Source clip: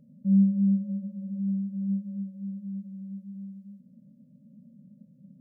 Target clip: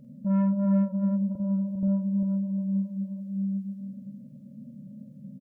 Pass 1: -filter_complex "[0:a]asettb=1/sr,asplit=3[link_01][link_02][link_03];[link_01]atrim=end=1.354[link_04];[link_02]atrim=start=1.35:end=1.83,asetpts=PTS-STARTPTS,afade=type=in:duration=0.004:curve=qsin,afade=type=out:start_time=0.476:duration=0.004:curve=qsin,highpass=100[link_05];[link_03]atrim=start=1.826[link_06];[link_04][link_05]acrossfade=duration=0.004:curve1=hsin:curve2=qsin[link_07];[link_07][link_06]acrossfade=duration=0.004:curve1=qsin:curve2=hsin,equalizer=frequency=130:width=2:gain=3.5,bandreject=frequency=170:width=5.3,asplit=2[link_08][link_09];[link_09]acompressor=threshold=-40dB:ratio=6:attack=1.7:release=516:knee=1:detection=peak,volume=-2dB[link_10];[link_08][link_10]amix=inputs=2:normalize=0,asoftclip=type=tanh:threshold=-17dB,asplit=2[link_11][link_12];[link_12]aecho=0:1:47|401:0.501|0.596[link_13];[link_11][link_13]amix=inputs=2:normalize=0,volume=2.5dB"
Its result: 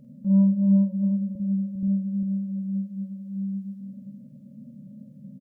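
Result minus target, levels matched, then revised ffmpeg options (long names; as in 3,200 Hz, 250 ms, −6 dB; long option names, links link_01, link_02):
downward compressor: peak gain reduction +8.5 dB; soft clipping: distortion −10 dB
-filter_complex "[0:a]asettb=1/sr,asplit=3[link_01][link_02][link_03];[link_01]atrim=end=1.354[link_04];[link_02]atrim=start=1.35:end=1.83,asetpts=PTS-STARTPTS,afade=type=in:duration=0.004:curve=qsin,afade=type=out:start_time=0.476:duration=0.004:curve=qsin,highpass=100[link_05];[link_03]atrim=start=1.826[link_06];[link_04][link_05]acrossfade=duration=0.004:curve1=hsin:curve2=qsin[link_07];[link_07][link_06]acrossfade=duration=0.004:curve1=qsin:curve2=hsin,equalizer=frequency=130:width=2:gain=3.5,bandreject=frequency=170:width=5.3,asplit=2[link_08][link_09];[link_09]acompressor=threshold=-30dB:ratio=6:attack=1.7:release=516:knee=1:detection=peak,volume=-2dB[link_10];[link_08][link_10]amix=inputs=2:normalize=0,asoftclip=type=tanh:threshold=-25.5dB,asplit=2[link_11][link_12];[link_12]aecho=0:1:47|401:0.501|0.596[link_13];[link_11][link_13]amix=inputs=2:normalize=0,volume=2.5dB"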